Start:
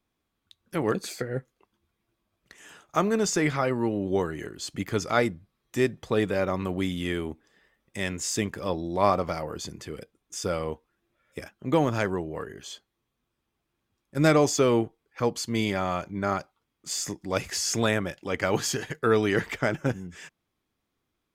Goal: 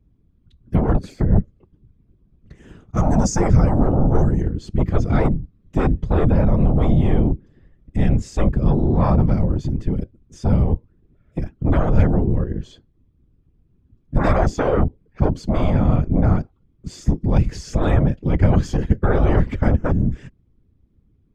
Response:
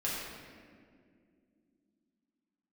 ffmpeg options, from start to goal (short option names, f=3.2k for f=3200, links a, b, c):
-filter_complex "[0:a]asettb=1/sr,asplit=3[a][b][c];[a]atrim=end=2.974[d];[b]atrim=start=2.97:end=4.41,asetpts=PTS-STARTPTS,afade=t=in:d=0.004:c=qsin,afade=t=out:st=1.436:d=0.004:c=qsin,highshelf=f=4.6k:t=q:w=3:g=8[e];[c]atrim=start=4.406[f];[d][e]acrossfade=d=0.004:c1=hsin:c2=qsin[g];[g][f]acrossfade=d=0.004:c1=qsin:c2=hsin,acrossover=split=330[h][i];[h]aeval=exprs='0.158*sin(PI/2*5.62*val(0)/0.158)':c=same[j];[j][i]amix=inputs=2:normalize=0,afftfilt=real='hypot(re,im)*cos(2*PI*random(0))':imag='hypot(re,im)*sin(2*PI*random(1))':win_size=512:overlap=0.75,aemphasis=mode=reproduction:type=bsi,volume=2.5dB"